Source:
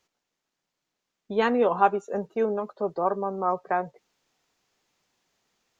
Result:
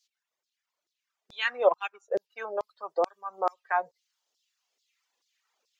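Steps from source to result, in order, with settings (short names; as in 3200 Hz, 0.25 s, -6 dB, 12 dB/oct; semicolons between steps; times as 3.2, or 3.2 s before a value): reverb removal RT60 1.6 s; 1.67–2.14 transient shaper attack +4 dB, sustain -10 dB; LFO high-pass saw down 2.3 Hz 400–5100 Hz; gain -1.5 dB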